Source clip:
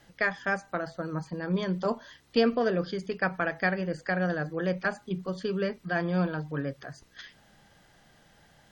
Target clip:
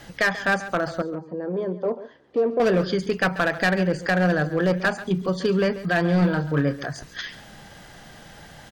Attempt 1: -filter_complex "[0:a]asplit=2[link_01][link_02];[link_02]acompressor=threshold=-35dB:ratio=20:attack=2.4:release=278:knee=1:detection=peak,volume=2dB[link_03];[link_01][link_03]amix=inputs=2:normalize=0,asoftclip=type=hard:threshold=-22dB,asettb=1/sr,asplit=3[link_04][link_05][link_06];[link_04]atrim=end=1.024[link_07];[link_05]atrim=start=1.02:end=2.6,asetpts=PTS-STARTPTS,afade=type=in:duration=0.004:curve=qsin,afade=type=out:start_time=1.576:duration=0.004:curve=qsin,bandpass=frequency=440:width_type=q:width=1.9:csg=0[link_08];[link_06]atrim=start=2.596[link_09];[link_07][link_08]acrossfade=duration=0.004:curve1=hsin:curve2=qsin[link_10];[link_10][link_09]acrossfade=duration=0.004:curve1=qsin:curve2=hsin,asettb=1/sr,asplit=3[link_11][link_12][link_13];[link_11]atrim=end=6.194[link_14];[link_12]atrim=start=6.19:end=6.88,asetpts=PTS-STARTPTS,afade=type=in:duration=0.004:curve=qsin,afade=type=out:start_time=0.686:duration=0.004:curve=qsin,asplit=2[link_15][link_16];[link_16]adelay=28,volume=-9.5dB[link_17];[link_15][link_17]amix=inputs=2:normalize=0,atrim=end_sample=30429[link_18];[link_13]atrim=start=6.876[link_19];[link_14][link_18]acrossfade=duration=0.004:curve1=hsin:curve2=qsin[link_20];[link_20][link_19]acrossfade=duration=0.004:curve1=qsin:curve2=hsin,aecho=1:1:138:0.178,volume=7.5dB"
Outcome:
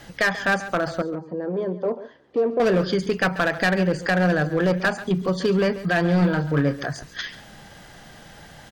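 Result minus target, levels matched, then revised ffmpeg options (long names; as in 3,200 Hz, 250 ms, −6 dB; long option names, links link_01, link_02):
downward compressor: peak gain reduction −6 dB
-filter_complex "[0:a]asplit=2[link_01][link_02];[link_02]acompressor=threshold=-41.5dB:ratio=20:attack=2.4:release=278:knee=1:detection=peak,volume=2dB[link_03];[link_01][link_03]amix=inputs=2:normalize=0,asoftclip=type=hard:threshold=-22dB,asettb=1/sr,asplit=3[link_04][link_05][link_06];[link_04]atrim=end=1.024[link_07];[link_05]atrim=start=1.02:end=2.6,asetpts=PTS-STARTPTS,afade=type=in:duration=0.004:curve=qsin,afade=type=out:start_time=1.576:duration=0.004:curve=qsin,bandpass=frequency=440:width_type=q:width=1.9:csg=0[link_08];[link_06]atrim=start=2.596[link_09];[link_07][link_08]acrossfade=duration=0.004:curve1=hsin:curve2=qsin[link_10];[link_10][link_09]acrossfade=duration=0.004:curve1=qsin:curve2=hsin,asettb=1/sr,asplit=3[link_11][link_12][link_13];[link_11]atrim=end=6.194[link_14];[link_12]atrim=start=6.19:end=6.88,asetpts=PTS-STARTPTS,afade=type=in:duration=0.004:curve=qsin,afade=type=out:start_time=0.686:duration=0.004:curve=qsin,asplit=2[link_15][link_16];[link_16]adelay=28,volume=-9.5dB[link_17];[link_15][link_17]amix=inputs=2:normalize=0,atrim=end_sample=30429[link_18];[link_13]atrim=start=6.876[link_19];[link_14][link_18]acrossfade=duration=0.004:curve1=hsin:curve2=qsin[link_20];[link_20][link_19]acrossfade=duration=0.004:curve1=qsin:curve2=hsin,aecho=1:1:138:0.178,volume=7.5dB"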